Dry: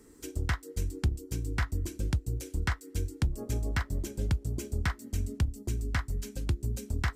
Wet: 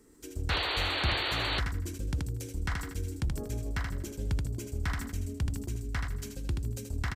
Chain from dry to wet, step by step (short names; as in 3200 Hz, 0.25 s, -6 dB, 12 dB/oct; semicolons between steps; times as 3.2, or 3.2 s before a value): feedback echo 79 ms, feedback 41%, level -8.5 dB; painted sound noise, 0.49–1.6, 280–4600 Hz -28 dBFS; sustainer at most 57 dB/s; gain -4 dB